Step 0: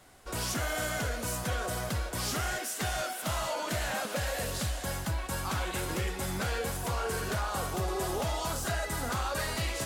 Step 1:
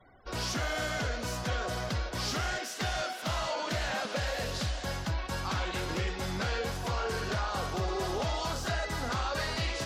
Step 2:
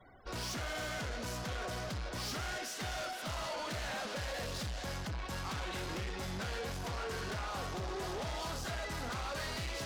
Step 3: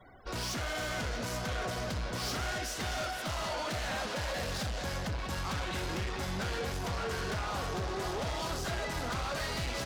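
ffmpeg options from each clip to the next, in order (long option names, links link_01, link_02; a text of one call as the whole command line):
ffmpeg -i in.wav -af "highshelf=frequency=6900:width_type=q:width=1.5:gain=-9,afftfilt=real='re*gte(hypot(re,im),0.00178)':imag='im*gte(hypot(re,im),0.00178)':win_size=1024:overlap=0.75" out.wav
ffmpeg -i in.wav -af "asoftclip=type=tanh:threshold=-36.5dB" out.wav
ffmpeg -i in.wav -filter_complex "[0:a]asplit=2[link_01][link_02];[link_02]adelay=641.4,volume=-7dB,highshelf=frequency=4000:gain=-14.4[link_03];[link_01][link_03]amix=inputs=2:normalize=0,volume=3.5dB" out.wav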